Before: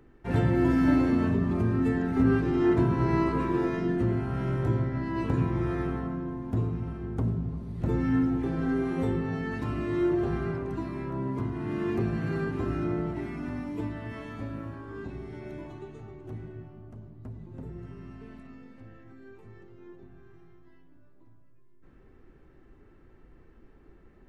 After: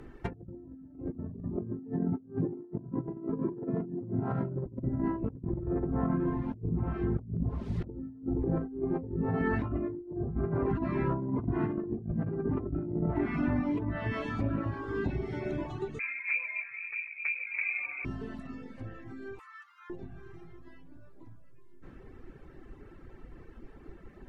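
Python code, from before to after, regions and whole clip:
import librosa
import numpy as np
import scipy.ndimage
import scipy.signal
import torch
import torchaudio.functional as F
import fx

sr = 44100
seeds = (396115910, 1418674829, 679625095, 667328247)

y = fx.chain(x, sr, fx.median_filter(points=15),
    fx.highpass(hz=120.0, slope=24), at=(1.56, 4.66))
y = fx.chain(y, sr, fx.dynamic_eq(hz=150.0, q=5.7, threshold_db=-49.0, ratio=4.0, max_db=-7),
    fx.quant_dither(seeds[0], bits=10, dither='none'), at=(7.42, 10.2))
y = fx.chain(y, sr, fx.freq_invert(carrier_hz=2500),
    fx.echo_single(ms=145, db=-12.5), at=(15.99, 18.05))
y = fx.chain(y, sr, fx.steep_highpass(hz=1000.0, slope=48),
    fx.peak_eq(hz=1300.0, db=9.0, octaves=0.76), at=(19.39, 19.9))
y = fx.env_lowpass_down(y, sr, base_hz=430.0, full_db=-25.0)
y = fx.dereverb_blind(y, sr, rt60_s=1.0)
y = fx.over_compress(y, sr, threshold_db=-36.0, ratio=-0.5)
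y = y * 10.0 ** (4.0 / 20.0)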